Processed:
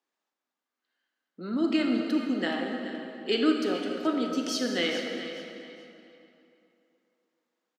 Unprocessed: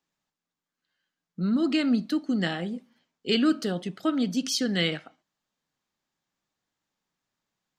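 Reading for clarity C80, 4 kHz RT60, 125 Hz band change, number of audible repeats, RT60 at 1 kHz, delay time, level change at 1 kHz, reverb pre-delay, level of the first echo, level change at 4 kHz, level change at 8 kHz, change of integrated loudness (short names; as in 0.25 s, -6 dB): 3.0 dB, 2.3 s, -12.0 dB, 2, 2.9 s, 0.425 s, +2.0 dB, 28 ms, -12.5 dB, -2.0 dB, -4.5 dB, -2.0 dB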